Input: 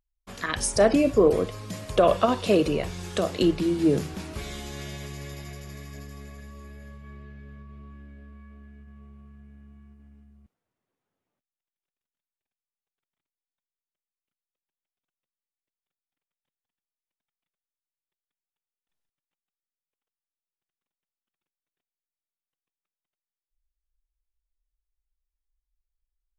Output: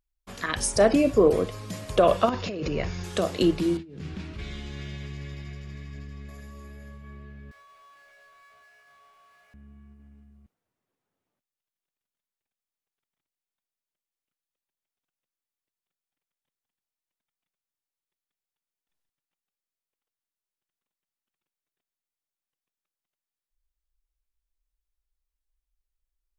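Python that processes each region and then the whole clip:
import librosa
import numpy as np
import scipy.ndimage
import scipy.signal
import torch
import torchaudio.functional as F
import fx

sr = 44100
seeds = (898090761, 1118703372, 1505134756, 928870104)

y = fx.chain(x, sr, fx.low_shelf(hz=260.0, db=7.0),
    fx.over_compress(threshold_db=-23.0, ratio=-1.0),
    fx.cheby_ripple(hz=6900.0, ripple_db=6), at=(2.29, 3.04))
y = fx.chain(y, sr, fx.lowpass(hz=3200.0, slope=12),
    fx.peak_eq(hz=710.0, db=-11.0, octaves=2.1),
    fx.over_compress(threshold_db=-36.0, ratio=-1.0), at=(3.77, 6.29))
y = fx.chain(y, sr, fx.steep_highpass(hz=580.0, slope=36),
    fx.power_curve(exponent=0.5), at=(7.51, 9.54))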